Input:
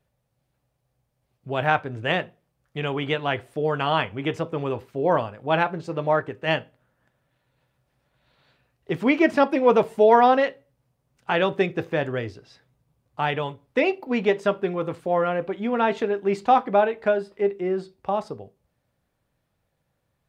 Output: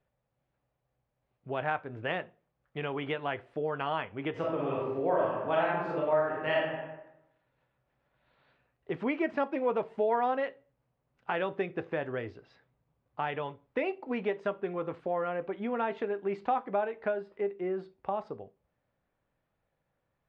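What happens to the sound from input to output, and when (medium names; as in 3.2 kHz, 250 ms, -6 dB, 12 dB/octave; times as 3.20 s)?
4.31–6.58 s: reverb throw, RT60 0.83 s, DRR -5.5 dB
whole clip: low-pass 2.5 kHz 12 dB/octave; peaking EQ 97 Hz -6 dB 2.6 oct; compression 2:1, threshold -29 dBFS; trim -3 dB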